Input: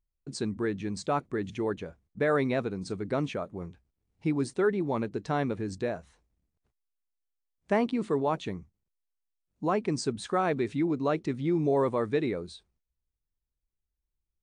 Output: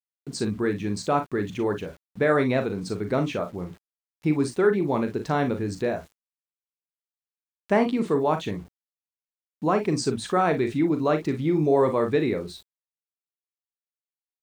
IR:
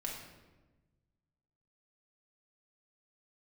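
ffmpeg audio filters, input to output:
-af "aecho=1:1:39|56:0.376|0.211,aeval=exprs='val(0)*gte(abs(val(0)),0.00224)':channel_layout=same,volume=4.5dB"

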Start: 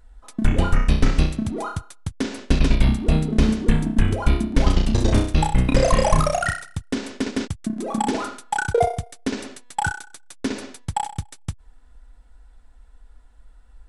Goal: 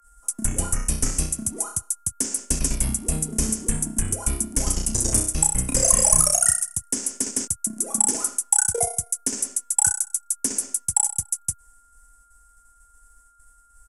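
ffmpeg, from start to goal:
ffmpeg -i in.wav -filter_complex "[0:a]agate=range=-33dB:threshold=-43dB:ratio=3:detection=peak,aeval=exprs='val(0)+0.00398*sin(2*PI*1400*n/s)':channel_layout=same,acrossover=split=200|1100|1500[link_01][link_02][link_03][link_04];[link_04]aexciter=amount=15.9:drive=9.7:freq=6300[link_05];[link_01][link_02][link_03][link_05]amix=inputs=4:normalize=0,aresample=32000,aresample=44100,volume=-9dB" out.wav

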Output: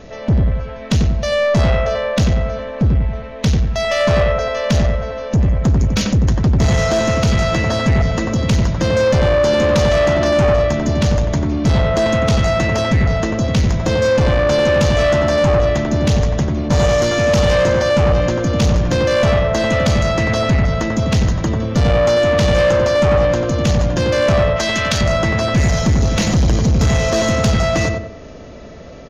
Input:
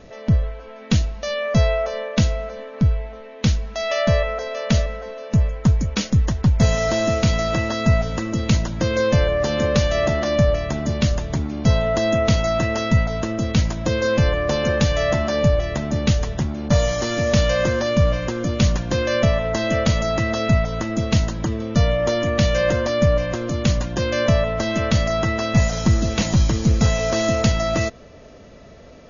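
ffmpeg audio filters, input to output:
ffmpeg -i in.wav -filter_complex "[0:a]asplit=2[link_01][link_02];[link_02]adelay=92,lowpass=frequency=1500:poles=1,volume=-3dB,asplit=2[link_03][link_04];[link_04]adelay=92,lowpass=frequency=1500:poles=1,volume=0.39,asplit=2[link_05][link_06];[link_06]adelay=92,lowpass=frequency=1500:poles=1,volume=0.39,asplit=2[link_07][link_08];[link_08]adelay=92,lowpass=frequency=1500:poles=1,volume=0.39,asplit=2[link_09][link_10];[link_10]adelay=92,lowpass=frequency=1500:poles=1,volume=0.39[link_11];[link_01][link_03][link_05][link_07][link_09][link_11]amix=inputs=6:normalize=0,asoftclip=type=tanh:threshold=-16dB,asettb=1/sr,asplit=3[link_12][link_13][link_14];[link_12]atrim=end=24.564[link_15];[link_13]atrim=start=24.56:end=25.01,asetpts=PTS-STARTPTS,afade=type=in:duration=0.004:curve=qsin,afade=type=out:start_time=0.446:duration=0.004:curve=qsin,tiltshelf=frequency=970:gain=-6[link_16];[link_14]atrim=start=25.006[link_17];[link_15][link_16]acrossfade=duration=0.004:curve1=hsin:curve2=qsin[link_18];[link_18][link_17]acrossfade=duration=0.004:curve1=qsin:curve2=hsin,volume=6.5dB" out.wav

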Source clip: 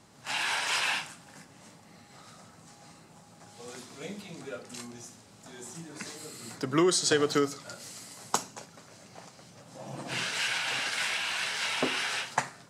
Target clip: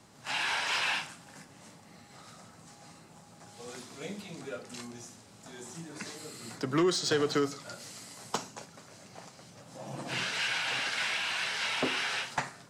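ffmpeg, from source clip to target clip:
ffmpeg -i in.wav -filter_complex "[0:a]acrossover=split=6200[link_01][link_02];[link_02]acompressor=threshold=-49dB:ratio=4:attack=1:release=60[link_03];[link_01][link_03]amix=inputs=2:normalize=0,acrossover=split=180[link_04][link_05];[link_05]asoftclip=type=tanh:threshold=-20.5dB[link_06];[link_04][link_06]amix=inputs=2:normalize=0" out.wav

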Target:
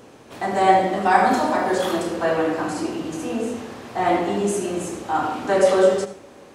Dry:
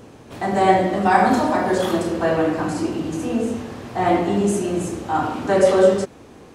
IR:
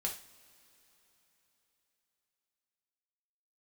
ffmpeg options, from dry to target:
-filter_complex "[0:a]lowshelf=frequency=200:gain=-11,asplit=2[link_01][link_02];[1:a]atrim=start_sample=2205,adelay=72[link_03];[link_02][link_03]afir=irnorm=-1:irlink=0,volume=-14dB[link_04];[link_01][link_04]amix=inputs=2:normalize=0"

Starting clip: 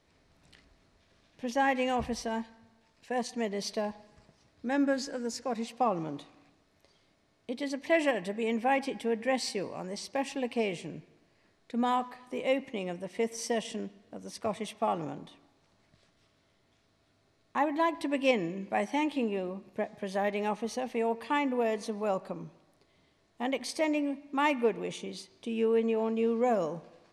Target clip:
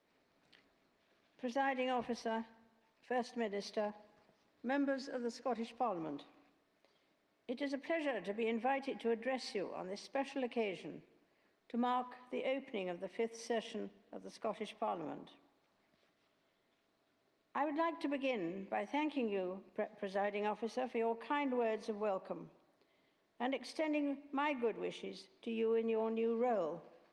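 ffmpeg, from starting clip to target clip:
ffmpeg -i in.wav -filter_complex "[0:a]asettb=1/sr,asplit=3[link_01][link_02][link_03];[link_01]atrim=end=3.904[link_04];[link_02]atrim=start=3.9:end=4.9,asetpts=PTS-STARTPTS,afade=type=in:duration=0.004:curve=qsin,afade=type=out:start_time=0.996:duration=0.004:curve=qsin,adynamicequalizer=threshold=0.002:dfrequency=4400:dqfactor=1.3:tfrequency=4400:tqfactor=1.3:attack=5:release=100:ratio=0.375:range=2:mode=boostabove:tftype=bell[link_05];[link_03]atrim=start=4.896[link_06];[link_04][link_05]acrossfade=duration=0.004:curve1=hsin:curve2=qsin[link_07];[link_07][link_06]acrossfade=duration=0.004:curve1=qsin:curve2=hsin,alimiter=limit=-23dB:level=0:latency=1:release=171,acrossover=split=190 5200:gain=0.1 1 0.2[link_08][link_09][link_10];[link_08][link_09][link_10]amix=inputs=3:normalize=0,volume=-4dB" -ar 48000 -c:a libopus -b:a 32k out.opus

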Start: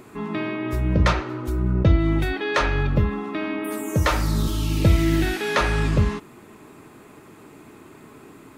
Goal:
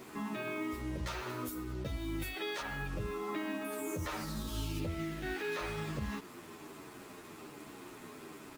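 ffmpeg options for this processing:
ffmpeg -i in.wav -filter_complex "[0:a]asettb=1/sr,asplit=3[link_01][link_02][link_03];[link_01]atrim=end=0.964[link_04];[link_02]atrim=start=0.96:end=2.62,asetpts=PTS-STARTPTS,afade=type=in:duration=0.004:curve=qsin,afade=type=out:start_time=1.656:duration=0.004:curve=qsin,aemphasis=mode=production:type=75fm[link_05];[link_03]atrim=start=2.616[link_06];[link_04][link_05]acrossfade=duration=0.004:curve1=hsin:curve2=qsin[link_07];[link_07][link_06]acrossfade=duration=0.004:curve1=qsin:curve2=hsin,asettb=1/sr,asplit=3[link_08][link_09][link_10];[link_08]atrim=end=4.794[link_11];[link_09]atrim=start=4.79:end=5.52,asetpts=PTS-STARTPTS,afade=type=in:duration=0.004:curve=qsin,afade=type=out:start_time=0.726:duration=0.004:curve=qsin,lowpass=frequency=2900:poles=1[link_12];[link_10]atrim=start=5.516[link_13];[link_11][link_12]acrossfade=duration=0.004:curve1=hsin:curve2=qsin[link_14];[link_14][link_13]acrossfade=duration=0.004:curve1=qsin:curve2=hsin,lowshelf=frequency=150:gain=-8,acompressor=threshold=-29dB:ratio=2.5,alimiter=level_in=2.5dB:limit=-24dB:level=0:latency=1:release=92,volume=-2.5dB,acrusher=bits=7:mix=0:aa=0.5,asplit=2[link_15][link_16];[link_16]adelay=10.1,afreqshift=-1.2[link_17];[link_15][link_17]amix=inputs=2:normalize=1" out.wav

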